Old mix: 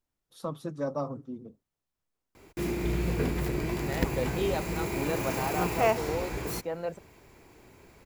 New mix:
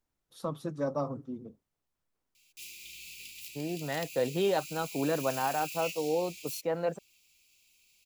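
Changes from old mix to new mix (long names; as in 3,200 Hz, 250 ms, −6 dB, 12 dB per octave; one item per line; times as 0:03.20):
second voice +3.0 dB
background: add elliptic high-pass filter 2,600 Hz, stop band 40 dB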